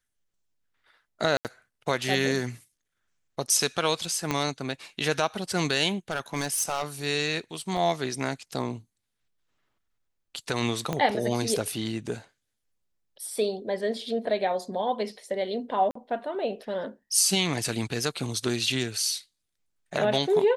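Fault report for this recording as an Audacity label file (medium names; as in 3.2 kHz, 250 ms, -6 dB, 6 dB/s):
1.370000	1.450000	dropout 78 ms
4.310000	4.310000	pop -11 dBFS
6.100000	6.840000	clipped -21.5 dBFS
7.770000	7.770000	dropout 4.1 ms
10.930000	10.930000	pop -14 dBFS
15.910000	15.950000	dropout 44 ms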